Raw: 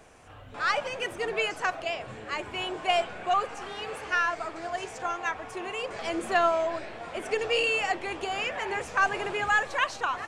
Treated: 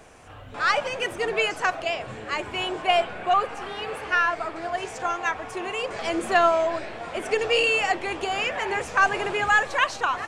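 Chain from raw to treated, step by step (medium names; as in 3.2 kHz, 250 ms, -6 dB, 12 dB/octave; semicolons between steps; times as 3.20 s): 2.82–4.85 s: peaking EQ 6.7 kHz -6.5 dB 1 oct; trim +4.5 dB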